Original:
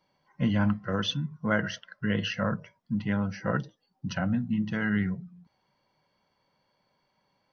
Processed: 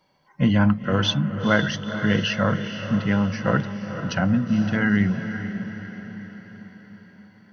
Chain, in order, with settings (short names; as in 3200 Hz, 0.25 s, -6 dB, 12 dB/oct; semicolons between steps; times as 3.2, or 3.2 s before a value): diffused feedback echo 0.48 s, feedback 54%, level -9.5 dB; gain +7 dB